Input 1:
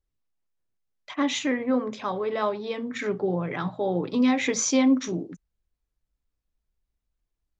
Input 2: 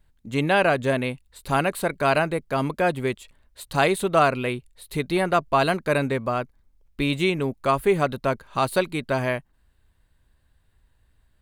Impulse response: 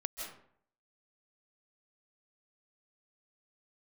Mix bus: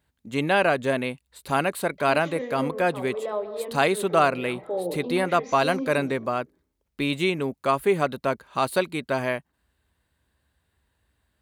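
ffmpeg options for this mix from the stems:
-filter_complex "[0:a]lowpass=4600,equalizer=f=520:w=1.1:g=12,adelay=900,volume=0.211,asplit=2[s0][s1];[s1]volume=0.447[s2];[1:a]volume=0.891,asplit=2[s3][s4];[s4]apad=whole_len=374553[s5];[s0][s5]sidechaincompress=threshold=0.0224:ratio=8:attack=47:release=152[s6];[2:a]atrim=start_sample=2205[s7];[s2][s7]afir=irnorm=-1:irlink=0[s8];[s6][s3][s8]amix=inputs=3:normalize=0,highpass=f=64:w=0.5412,highpass=f=64:w=1.3066,equalizer=f=110:t=o:w=0.93:g=-6.5"

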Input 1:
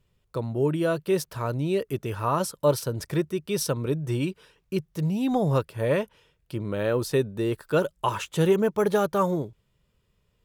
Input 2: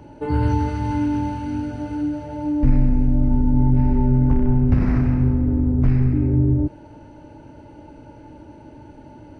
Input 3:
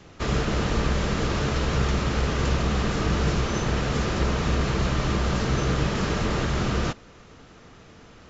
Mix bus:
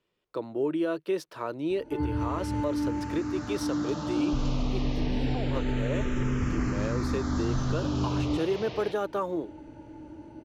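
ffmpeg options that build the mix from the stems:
-filter_complex "[0:a]acrossover=split=230 5500:gain=0.0891 1 0.224[s0][s1][s2];[s0][s1][s2]amix=inputs=3:normalize=0,volume=0.794[s3];[1:a]adelay=1700,volume=0.473[s4];[2:a]highpass=160,dynaudnorm=f=280:g=11:m=4.22,asplit=2[s5][s6];[s6]afreqshift=-0.27[s7];[s5][s7]amix=inputs=2:normalize=1,adelay=2000,volume=0.126[s8];[s3][s4]amix=inputs=2:normalize=0,equalizer=f=320:w=6.4:g=8.5,alimiter=limit=0.1:level=0:latency=1:release=286,volume=1[s9];[s8][s9]amix=inputs=2:normalize=0"

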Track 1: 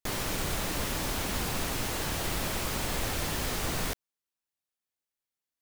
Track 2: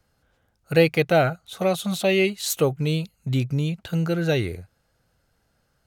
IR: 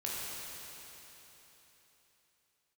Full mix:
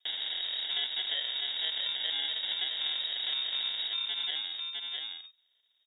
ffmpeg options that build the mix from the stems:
-filter_complex "[0:a]volume=1.06,asplit=2[s0][s1];[s1]volume=0.251[s2];[1:a]acompressor=threshold=0.0891:ratio=2.5,volume=0.531,asplit=2[s3][s4];[s4]volume=0.447[s5];[s2][s5]amix=inputs=2:normalize=0,aecho=0:1:655:1[s6];[s0][s3][s6]amix=inputs=3:normalize=0,acrusher=samples=34:mix=1:aa=0.000001,lowpass=f=3200:t=q:w=0.5098,lowpass=f=3200:t=q:w=0.6013,lowpass=f=3200:t=q:w=0.9,lowpass=f=3200:t=q:w=2.563,afreqshift=-3800,acompressor=threshold=0.0178:ratio=2"

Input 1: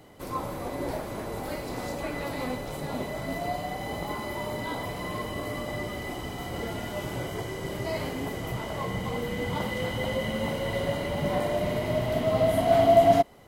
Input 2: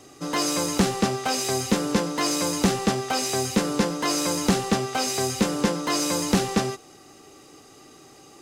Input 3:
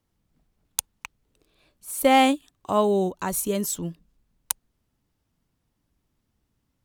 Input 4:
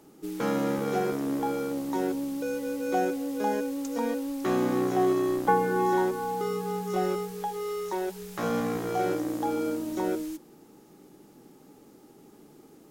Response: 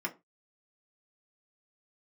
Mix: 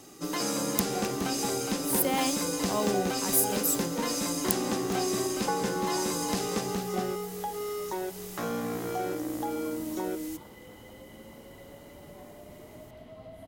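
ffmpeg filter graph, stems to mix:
-filter_complex "[0:a]equalizer=f=130:w=1.5:g=-7,acrossover=split=220[s0][s1];[s1]acompressor=threshold=0.0178:ratio=2[s2];[s0][s2]amix=inputs=2:normalize=0,adelay=850,volume=0.15[s3];[1:a]volume=0.562,asplit=2[s4][s5];[s5]volume=0.335[s6];[2:a]alimiter=limit=0.282:level=0:latency=1,aemphasis=mode=production:type=50fm,volume=0.355,asplit=2[s7][s8];[s8]volume=0.0841[s9];[3:a]volume=0.891[s10];[s4][s10]amix=inputs=2:normalize=0,highshelf=f=6300:g=7.5,acompressor=threshold=0.0282:ratio=2,volume=1[s11];[s6][s9]amix=inputs=2:normalize=0,aecho=0:1:415:1[s12];[s3][s7][s11][s12]amix=inputs=4:normalize=0"

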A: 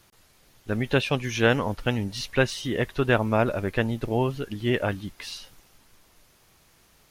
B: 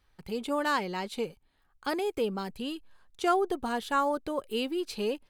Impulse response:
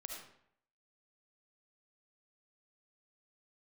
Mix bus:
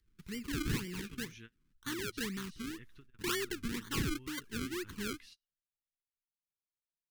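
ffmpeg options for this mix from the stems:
-filter_complex "[0:a]acompressor=threshold=0.01:ratio=2,volume=0.15[s0];[1:a]highshelf=f=4800:g=-4.5,acrusher=samples=33:mix=1:aa=0.000001:lfo=1:lforange=33:lforate=2,volume=0.631,asplit=2[s1][s2];[s2]apad=whole_len=313406[s3];[s0][s3]sidechaingate=range=0.0224:threshold=0.00112:ratio=16:detection=peak[s4];[s4][s1]amix=inputs=2:normalize=0,asuperstop=centerf=660:order=4:qfactor=0.66"

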